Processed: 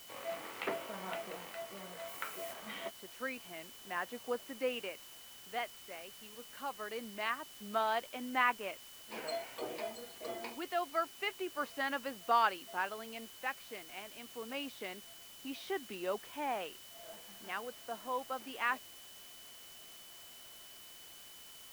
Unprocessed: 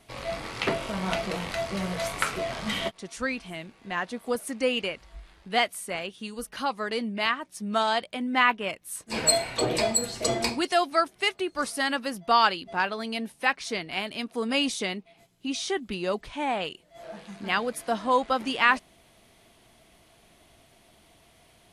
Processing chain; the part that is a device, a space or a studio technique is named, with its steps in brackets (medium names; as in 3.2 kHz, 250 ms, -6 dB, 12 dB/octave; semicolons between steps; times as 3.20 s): shortwave radio (band-pass 310–2500 Hz; tremolo 0.25 Hz, depth 56%; whistle 3 kHz -50 dBFS; white noise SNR 14 dB); 2.07–2.52 s: treble shelf 8.5 kHz -> 5.4 kHz +7.5 dB; trim -7.5 dB